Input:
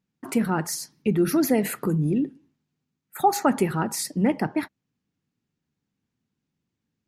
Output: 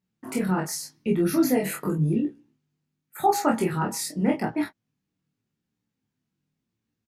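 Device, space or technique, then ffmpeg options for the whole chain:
double-tracked vocal: -filter_complex "[0:a]asplit=2[s0][s1];[s1]adelay=27,volume=0.75[s2];[s0][s2]amix=inputs=2:normalize=0,flanger=delay=17:depth=4:speed=0.87"

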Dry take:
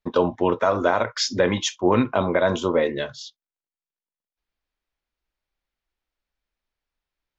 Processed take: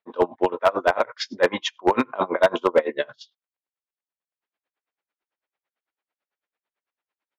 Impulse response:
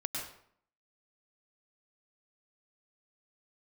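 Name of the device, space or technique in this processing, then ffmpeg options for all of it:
helicopter radio: -filter_complex "[0:a]asettb=1/sr,asplit=3[s0][s1][s2];[s0]atrim=end=1.324[s3];[s1]atrim=start=1.32:end=2.69,asetpts=PTS-STARTPTS,afade=t=in:d=0.004:c=qsin,afade=t=out:st=1.366:d=0.004:c=qsin,equalizer=f=1100:t=o:w=1.1:g=3.5[s4];[s2]atrim=start=2.686[s5];[s3][s4]acrossfade=d=0.004:c1=hsin:c2=qsin[s6];[s6][s5]acrossfade=d=0.004:c1=qsin:c2=hsin,highpass=380,lowpass=2600,aeval=exprs='val(0)*pow(10,-26*(0.5-0.5*cos(2*PI*9*n/s))/20)':c=same,asoftclip=type=hard:threshold=0.15,volume=2.37"

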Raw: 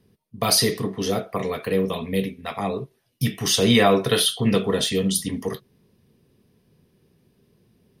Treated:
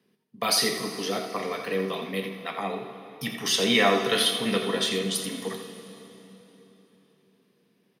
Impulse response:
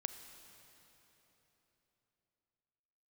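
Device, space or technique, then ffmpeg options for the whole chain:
PA in a hall: -filter_complex "[0:a]highpass=f=170:w=0.5412,highpass=f=170:w=1.3066,equalizer=f=2000:t=o:w=2.5:g=7,aecho=1:1:84:0.335[s0];[1:a]atrim=start_sample=2205[s1];[s0][s1]afir=irnorm=-1:irlink=0,volume=0.531"

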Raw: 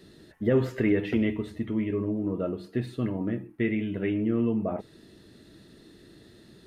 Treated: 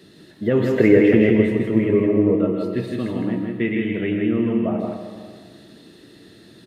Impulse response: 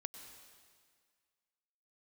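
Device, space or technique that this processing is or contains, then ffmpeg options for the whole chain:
PA in a hall: -filter_complex "[0:a]asettb=1/sr,asplit=3[s0][s1][s2];[s0]atrim=end=0.784[s3];[s1]atrim=start=0.78:end=2.36,asetpts=PTS-STARTPTS,afade=t=in:d=0.004:c=qsin,afade=t=out:st=1.576:d=0.004:c=qsin,equalizer=f=125:t=o:w=1:g=7,equalizer=f=500:t=o:w=1:g=11,equalizer=f=2000:t=o:w=1:g=5,equalizer=f=4000:t=o:w=1:g=-7[s4];[s2]atrim=start=2.356[s5];[s3][s4]acrossfade=d=0.004:c1=hsin:c2=qsin[s6];[s6][s5]acrossfade=d=0.004:c1=qsin:c2=hsin,highpass=100,equalizer=f=2900:t=o:w=0.77:g=3,aecho=1:1:162:0.631[s7];[1:a]atrim=start_sample=2205[s8];[s7][s8]afir=irnorm=-1:irlink=0,volume=2.51"

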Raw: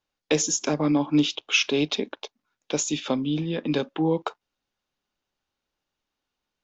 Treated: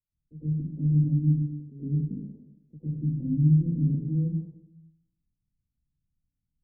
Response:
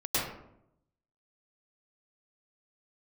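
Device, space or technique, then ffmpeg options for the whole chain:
club heard from the street: -filter_complex "[0:a]alimiter=limit=0.15:level=0:latency=1:release=76,lowpass=f=170:w=0.5412,lowpass=f=170:w=1.3066[s0];[1:a]atrim=start_sample=2205[s1];[s0][s1]afir=irnorm=-1:irlink=0"

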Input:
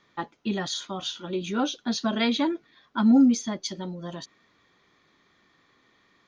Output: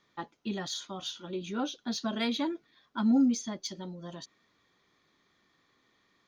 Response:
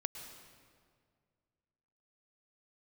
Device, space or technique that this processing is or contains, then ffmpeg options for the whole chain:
exciter from parts: -filter_complex "[0:a]asettb=1/sr,asplit=3[s0][s1][s2];[s0]atrim=end=1.314[s3];[s1]atrim=start=1.31:end=1.82,asetpts=PTS-STARTPTS,afade=t=in:d=0.004:c=qsin,afade=t=out:st=0.506:d=0.004:c=qsin,highshelf=f=5300:g=-6[s4];[s2]atrim=start=1.816[s5];[s3][s4]acrossfade=d=0.004:c1=hsin:c2=qsin[s6];[s6][s5]acrossfade=d=0.004:c1=qsin:c2=hsin,asplit=2[s7][s8];[s8]highpass=3100,asoftclip=type=tanh:threshold=0.0335,volume=0.501[s9];[s7][s9]amix=inputs=2:normalize=0,volume=0.473"

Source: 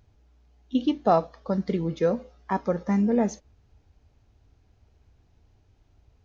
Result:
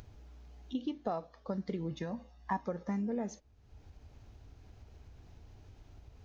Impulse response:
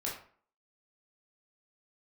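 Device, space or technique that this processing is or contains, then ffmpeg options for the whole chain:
upward and downward compression: -filter_complex "[0:a]acompressor=mode=upward:threshold=0.02:ratio=2.5,acompressor=threshold=0.0562:ratio=6,asettb=1/sr,asplit=3[s0][s1][s2];[s0]atrim=end=1.914[s3];[s1]atrim=start=1.91:end=2.66,asetpts=PTS-STARTPTS,afade=t=in:d=0.004:c=qsin,afade=t=out:st=0.746:d=0.004:c=qsin,aecho=1:1:1.1:0.71,atrim=end_sample=33075[s4];[s2]atrim=start=2.656[s5];[s3][s4]acrossfade=d=0.004:c1=hsin:c2=qsin[s6];[s6][s5]acrossfade=d=0.004:c1=qsin:c2=hsin,volume=0.447"

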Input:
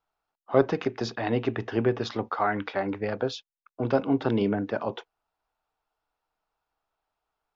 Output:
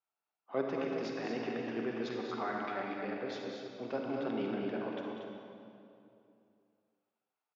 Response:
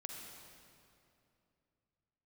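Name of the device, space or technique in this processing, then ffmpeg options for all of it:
stadium PA: -filter_complex "[0:a]highpass=f=160:w=0.5412,highpass=f=160:w=1.3066,equalizer=f=2400:t=o:w=0.63:g=5,aecho=1:1:192.4|233.2:0.355|0.501[s0];[1:a]atrim=start_sample=2205[s1];[s0][s1]afir=irnorm=-1:irlink=0,volume=0.376"

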